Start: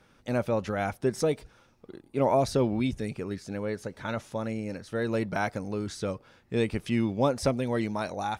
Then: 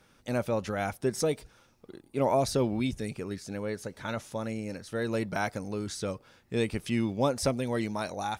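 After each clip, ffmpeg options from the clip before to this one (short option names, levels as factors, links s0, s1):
-af "highshelf=f=4800:g=8,volume=0.794"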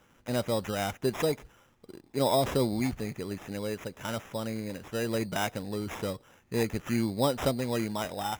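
-af "acrusher=samples=10:mix=1:aa=0.000001"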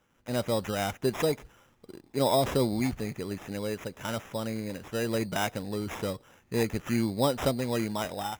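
-af "dynaudnorm=f=110:g=5:m=2.82,volume=0.398"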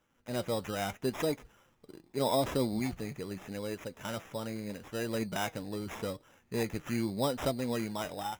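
-af "flanger=delay=2.9:depth=4.1:regen=72:speed=0.8:shape=triangular"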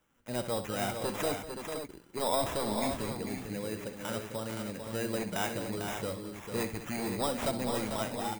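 -filter_complex "[0:a]acrossover=split=580[s0][s1];[s0]aeval=exprs='0.0299*(abs(mod(val(0)/0.0299+3,4)-2)-1)':c=same[s2];[s1]aexciter=amount=1.8:drive=2.9:freq=8000[s3];[s2][s3]amix=inputs=2:normalize=0,aecho=1:1:65|198|447|520:0.282|0.188|0.447|0.422"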